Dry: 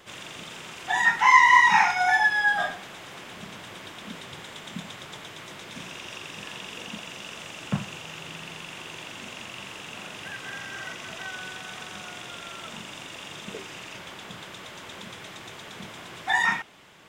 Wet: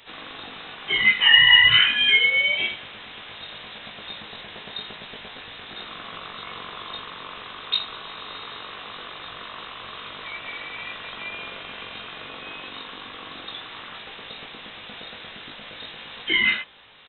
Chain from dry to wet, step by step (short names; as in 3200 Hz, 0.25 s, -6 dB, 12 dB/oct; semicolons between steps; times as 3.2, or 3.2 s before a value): doubler 19 ms -4.5 dB; inverted band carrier 3900 Hz; gain +1 dB